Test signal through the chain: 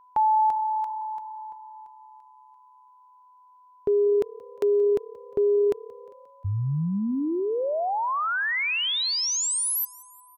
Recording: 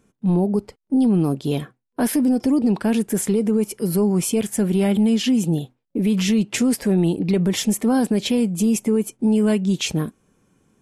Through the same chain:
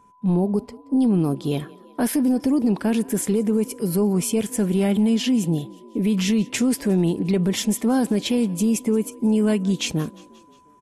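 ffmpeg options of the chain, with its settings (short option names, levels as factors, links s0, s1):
-filter_complex "[0:a]aeval=exprs='val(0)+0.00282*sin(2*PI*1000*n/s)':c=same,asplit=5[s0][s1][s2][s3][s4];[s1]adelay=177,afreqshift=35,volume=0.075[s5];[s2]adelay=354,afreqshift=70,volume=0.0442[s6];[s3]adelay=531,afreqshift=105,volume=0.026[s7];[s4]adelay=708,afreqshift=140,volume=0.0155[s8];[s0][s5][s6][s7][s8]amix=inputs=5:normalize=0,volume=0.841"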